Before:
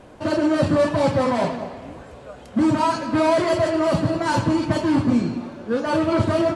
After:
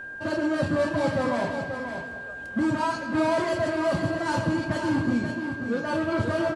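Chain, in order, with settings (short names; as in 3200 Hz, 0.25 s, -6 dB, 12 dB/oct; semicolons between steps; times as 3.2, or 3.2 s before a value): echo 0.533 s -7.5 dB; whine 1600 Hz -29 dBFS; gain -6.5 dB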